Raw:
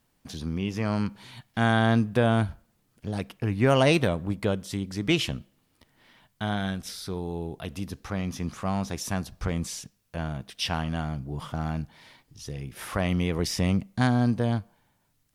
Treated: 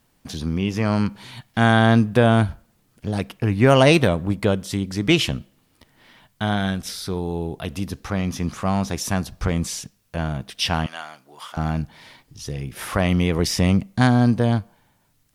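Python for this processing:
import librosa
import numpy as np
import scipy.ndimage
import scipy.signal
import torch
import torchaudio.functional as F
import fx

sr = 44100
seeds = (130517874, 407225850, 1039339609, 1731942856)

y = fx.bessel_highpass(x, sr, hz=1200.0, order=2, at=(10.86, 11.57))
y = F.gain(torch.from_numpy(y), 6.5).numpy()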